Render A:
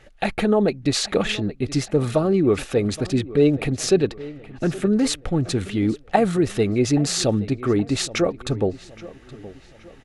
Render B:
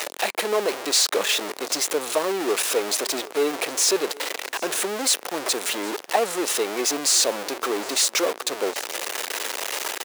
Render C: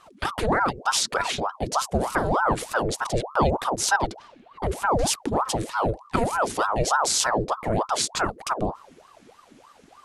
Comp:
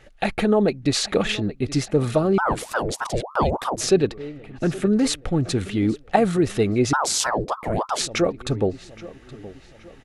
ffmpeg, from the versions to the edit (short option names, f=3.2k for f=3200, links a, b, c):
-filter_complex "[2:a]asplit=2[a][b];[0:a]asplit=3[c][d][e];[c]atrim=end=2.382[f];[a]atrim=start=2.378:end=3.812[g];[d]atrim=start=3.808:end=6.932[h];[b]atrim=start=6.928:end=8.012[i];[e]atrim=start=8.008[j];[f][g]acrossfade=d=0.004:c1=hsin:c2=hsin[k];[k][h]acrossfade=d=0.004:c1=hsin:c2=hsin[l];[l][i]acrossfade=d=0.004:c1=hsin:c2=hsin[m];[m][j]acrossfade=d=0.004:c1=hsin:c2=hsin"